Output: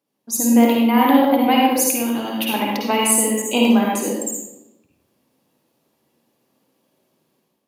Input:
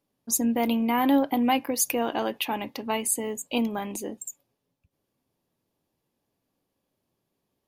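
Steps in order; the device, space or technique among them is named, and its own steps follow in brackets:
0:01.73–0:02.54: drawn EQ curve 200 Hz 0 dB, 550 Hz −13 dB, 13,000 Hz 0 dB
far laptop microphone (convolution reverb RT60 0.90 s, pre-delay 48 ms, DRR −2.5 dB; high-pass filter 180 Hz 12 dB per octave; automatic gain control gain up to 9 dB)

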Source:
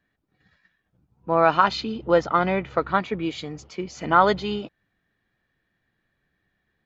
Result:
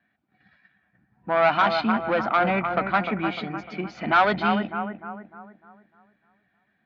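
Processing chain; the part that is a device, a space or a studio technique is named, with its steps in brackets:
analogue delay pedal into a guitar amplifier (bucket-brigade delay 301 ms, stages 4,096, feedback 42%, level −9.5 dB; tube saturation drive 17 dB, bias 0.3; loudspeaker in its box 99–4,300 Hz, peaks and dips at 220 Hz +8 dB, 460 Hz −7 dB, 730 Hz +10 dB, 1,500 Hz +7 dB, 2,300 Hz +7 dB)

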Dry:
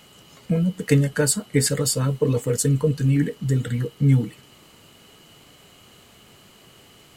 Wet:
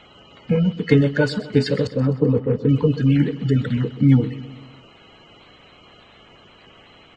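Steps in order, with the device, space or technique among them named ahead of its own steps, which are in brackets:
clip after many re-uploads (low-pass filter 4,300 Hz 24 dB per octave; spectral magnitudes quantised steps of 30 dB)
0:01.87–0:02.69: low-pass filter 1,300 Hz 12 dB per octave
repeating echo 128 ms, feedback 56%, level −16 dB
level +3.5 dB

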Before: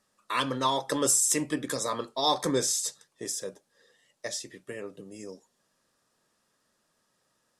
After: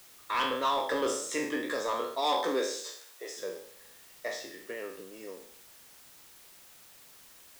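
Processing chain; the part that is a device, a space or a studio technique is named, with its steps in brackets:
peak hold with a decay on every bin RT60 0.60 s
tape answering machine (band-pass filter 350–3,200 Hz; soft clipping −21.5 dBFS, distortion −15 dB; tape wow and flutter; white noise bed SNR 20 dB)
0:02.21–0:03.36: high-pass filter 150 Hz → 450 Hz 24 dB per octave

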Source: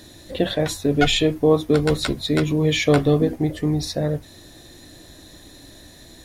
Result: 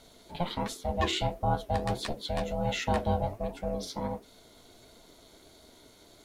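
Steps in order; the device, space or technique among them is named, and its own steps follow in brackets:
alien voice (ring modulation 350 Hz; flanger 1.4 Hz, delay 3.4 ms, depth 9.7 ms, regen +68%)
level −4 dB

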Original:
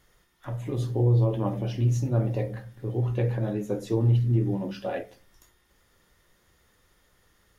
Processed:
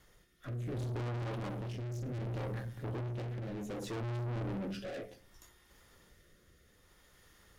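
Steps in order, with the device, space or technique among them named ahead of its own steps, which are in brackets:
overdriven rotary cabinet (tube saturation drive 40 dB, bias 0.45; rotating-speaker cabinet horn 0.65 Hz)
level +4.5 dB

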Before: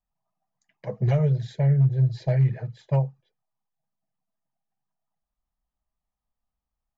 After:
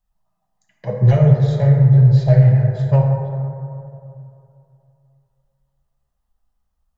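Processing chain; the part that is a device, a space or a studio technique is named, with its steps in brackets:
low shelf boost with a cut just above (low-shelf EQ 110 Hz +6 dB; parametric band 270 Hz −3 dB 0.95 octaves)
notch filter 2,300 Hz, Q 9.1
dense smooth reverb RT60 2.7 s, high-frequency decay 0.3×, DRR −0.5 dB
level +5.5 dB

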